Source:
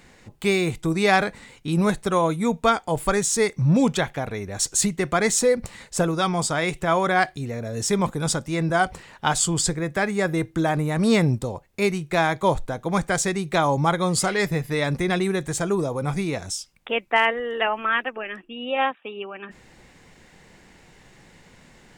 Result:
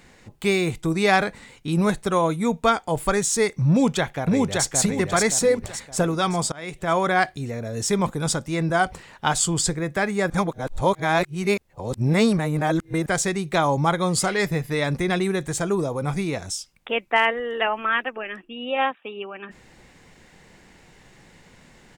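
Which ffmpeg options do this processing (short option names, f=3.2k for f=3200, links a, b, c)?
-filter_complex "[0:a]asplit=2[a][b];[b]afade=t=in:st=3.7:d=0.01,afade=t=out:st=4.66:d=0.01,aecho=0:1:570|1140|1710|2280|2850:0.794328|0.317731|0.127093|0.050837|0.0203348[c];[a][c]amix=inputs=2:normalize=0,asplit=4[d][e][f][g];[d]atrim=end=6.52,asetpts=PTS-STARTPTS,afade=t=out:st=6.516:d=0.004:c=hsin:silence=0.0668344[h];[e]atrim=start=6.52:end=10.302,asetpts=PTS-STARTPTS,afade=t=in:d=0.45:silence=0.0668344[i];[f]atrim=start=10.298:end=13.062,asetpts=PTS-STARTPTS,areverse[j];[g]atrim=start=13.058[k];[h][i]concat=n=2:v=0:a=1[l];[l][j]acrossfade=d=0.004:c1=hsin:c2=hsin[m];[m][k]acrossfade=d=0.004:c1=hsin:c2=hsin"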